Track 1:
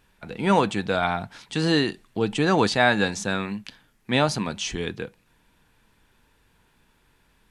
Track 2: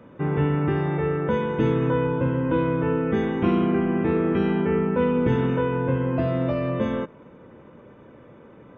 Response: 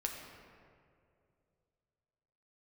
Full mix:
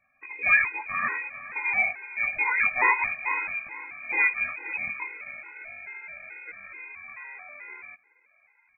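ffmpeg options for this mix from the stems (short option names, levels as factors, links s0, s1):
-filter_complex "[0:a]equalizer=f=76:t=o:w=1.2:g=9,flanger=delay=15.5:depth=5.5:speed=2.5,volume=1.12,asplit=3[s0][s1][s2];[s1]volume=0.168[s3];[s2]volume=0.188[s4];[1:a]asoftclip=type=hard:threshold=0.0794,lowshelf=f=300:g=-7.5,acrusher=samples=23:mix=1:aa=0.000001:lfo=1:lforange=13.8:lforate=0.25,adelay=900,volume=0.299[s5];[2:a]atrim=start_sample=2205[s6];[s3][s6]afir=irnorm=-1:irlink=0[s7];[s4]aecho=0:1:462|924|1386|1848:1|0.31|0.0961|0.0298[s8];[s0][s5][s7][s8]amix=inputs=4:normalize=0,lowpass=f=2200:t=q:w=0.5098,lowpass=f=2200:t=q:w=0.6013,lowpass=f=2200:t=q:w=0.9,lowpass=f=2200:t=q:w=2.563,afreqshift=-2600,afftfilt=real='re*gt(sin(2*PI*2.3*pts/sr)*(1-2*mod(floor(b*sr/1024/270),2)),0)':imag='im*gt(sin(2*PI*2.3*pts/sr)*(1-2*mod(floor(b*sr/1024/270),2)),0)':win_size=1024:overlap=0.75"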